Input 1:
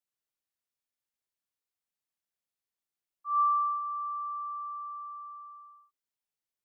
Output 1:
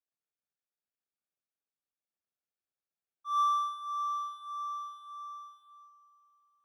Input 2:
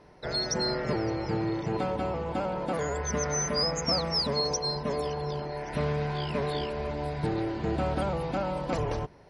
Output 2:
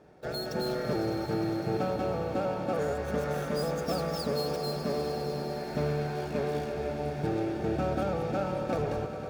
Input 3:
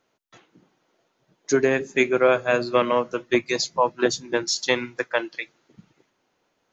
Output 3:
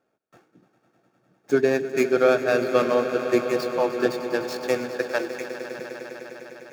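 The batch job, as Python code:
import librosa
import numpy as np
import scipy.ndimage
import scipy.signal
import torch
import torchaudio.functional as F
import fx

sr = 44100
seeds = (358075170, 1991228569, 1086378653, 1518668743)

y = scipy.ndimage.median_filter(x, 15, mode='constant')
y = fx.notch_comb(y, sr, f0_hz=1000.0)
y = fx.echo_swell(y, sr, ms=101, loudest=5, wet_db=-14.5)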